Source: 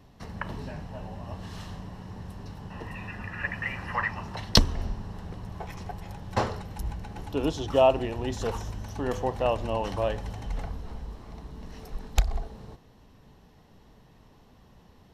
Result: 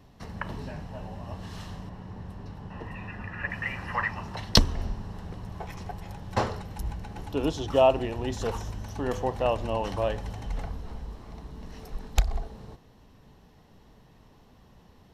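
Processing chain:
0:01.89–0:03.50: high-shelf EQ 4,100 Hz −9.5 dB

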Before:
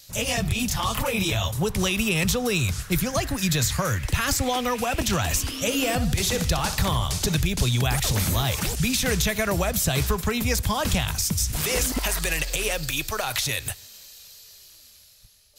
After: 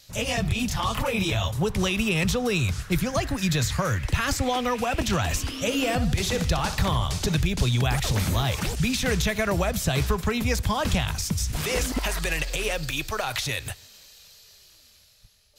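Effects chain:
high-shelf EQ 6,800 Hz −10.5 dB

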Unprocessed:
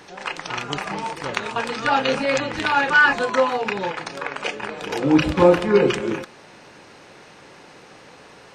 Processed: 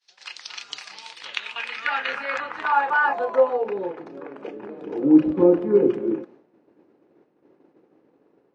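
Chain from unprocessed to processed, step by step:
band-pass filter sweep 4,600 Hz → 320 Hz, 0:00.91–0:04.13
downward expander −46 dBFS
level +3 dB

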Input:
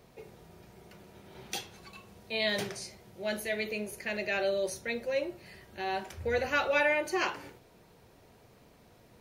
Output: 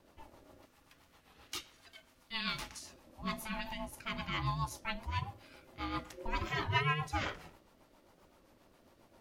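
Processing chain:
0:00.65–0:02.83: high-pass filter 750 Hz 6 dB per octave
ring modulation 450 Hz
rotating-speaker cabinet horn 7.5 Hz
wow of a warped record 33 1/3 rpm, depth 100 cents

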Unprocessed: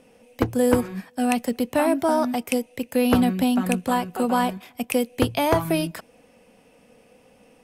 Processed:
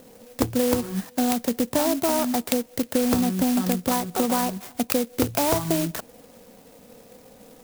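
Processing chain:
downward compressor 4 to 1, threshold −26 dBFS, peak gain reduction 11 dB
converter with an unsteady clock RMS 0.11 ms
level +6 dB

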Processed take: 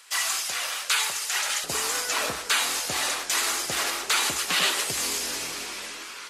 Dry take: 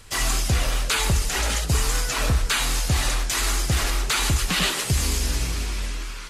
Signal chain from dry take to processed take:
high-pass filter 990 Hz 12 dB per octave, from 0:01.64 400 Hz

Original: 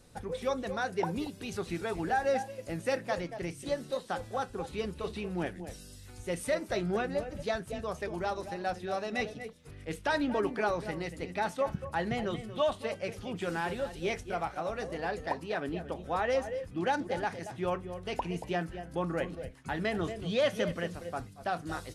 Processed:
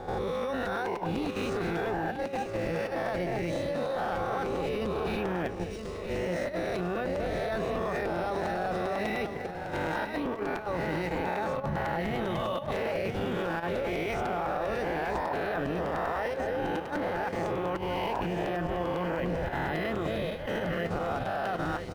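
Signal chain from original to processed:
peak hold with a rise ahead of every peak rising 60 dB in 1.17 s
high-shelf EQ 3,200 Hz −2.5 dB
compressor whose output falls as the input rises −32 dBFS, ratio −1
brickwall limiter −23.5 dBFS, peak gain reduction 5 dB
output level in coarse steps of 9 dB
high-frequency loss of the air 56 metres
on a send: single-tap delay 974 ms −8.5 dB
on the sum: regular buffer underruns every 0.10 s, samples 256, repeat
linearly interpolated sample-rate reduction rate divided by 3×
level +5 dB

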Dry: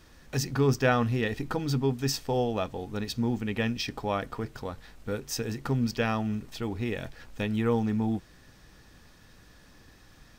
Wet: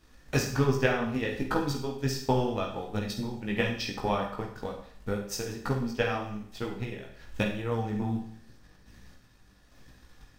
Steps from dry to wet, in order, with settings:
transient designer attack +10 dB, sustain −3 dB
sample-and-hold tremolo
multi-voice chorus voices 4, 1.3 Hz, delay 18 ms, depth 3 ms
four-comb reverb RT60 0.58 s, combs from 31 ms, DRR 4 dB

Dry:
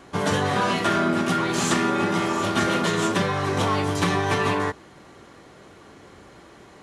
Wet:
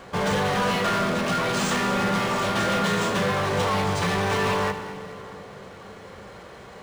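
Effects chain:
parametric band 230 Hz −6.5 dB 1.4 octaves
in parallel at −6.5 dB: wrap-around overflow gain 22.5 dB
on the sum: thirty-one-band graphic EQ 200 Hz +8 dB, 315 Hz −8 dB, 500 Hz +7 dB
soft clipping −21.5 dBFS, distortion −13 dB
echo with a time of its own for lows and highs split 840 Hz, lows 335 ms, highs 213 ms, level −14 dB
on a send at −13 dB: convolution reverb RT60 2.7 s, pre-delay 5 ms
on the sum: linearly interpolated sample-rate reduction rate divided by 3×
level +2 dB

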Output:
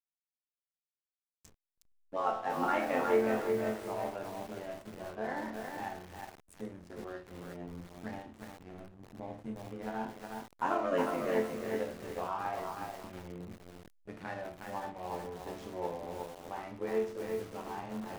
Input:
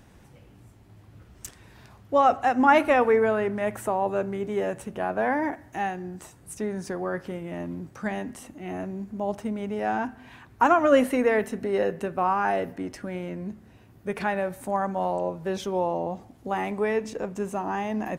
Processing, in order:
0:06.84–0:07.31: parametric band 63 Hz −13 dB 2.7 octaves
amplitude modulation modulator 93 Hz, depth 85%
resonators tuned to a chord D2 minor, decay 0.55 s
slack as between gear wheels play −50.5 dBFS
feedback echo at a low word length 363 ms, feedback 35%, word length 9 bits, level −3.5 dB
level +6 dB

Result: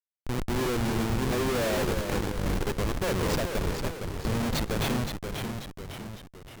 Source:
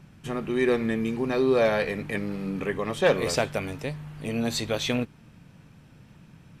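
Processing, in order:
comparator with hysteresis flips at −26.5 dBFS
delay with pitch and tempo change per echo 250 ms, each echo −1 semitone, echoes 3, each echo −6 dB

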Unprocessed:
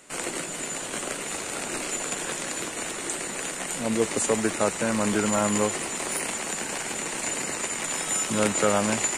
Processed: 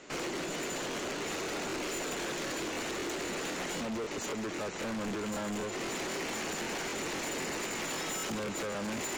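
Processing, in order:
Butterworth low-pass 6,600 Hz 48 dB per octave
parametric band 370 Hz +5.5 dB 0.99 octaves
downward compressor 4 to 1, threshold −28 dBFS, peak gain reduction 12 dB
gain into a clipping stage and back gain 34.5 dB
regular buffer underruns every 0.26 s, samples 1,024, repeat, from 0:00.90
level +1 dB

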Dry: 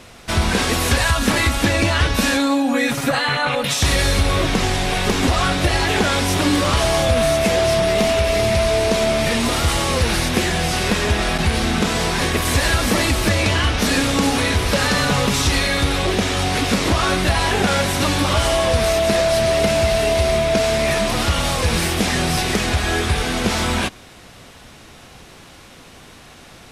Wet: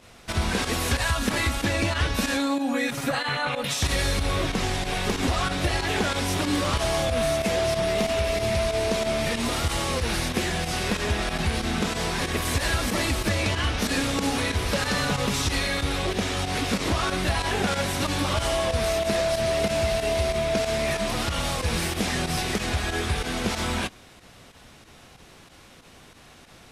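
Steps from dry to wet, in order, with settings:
fake sidechain pumping 93 BPM, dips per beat 2, −10 dB, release 62 ms
level −7 dB

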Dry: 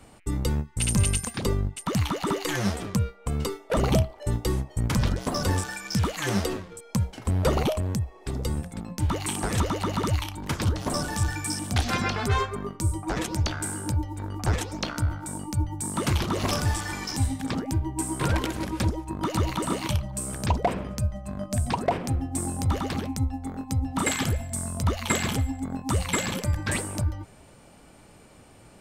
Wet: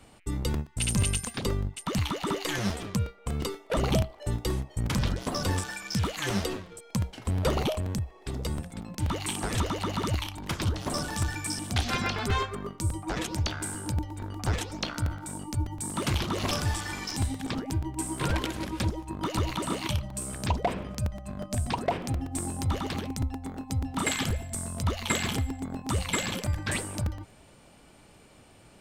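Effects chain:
parametric band 3,300 Hz +4 dB 1.2 octaves
regular buffer underruns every 0.12 s, samples 128, repeat, from 0:00.42
level −3.5 dB

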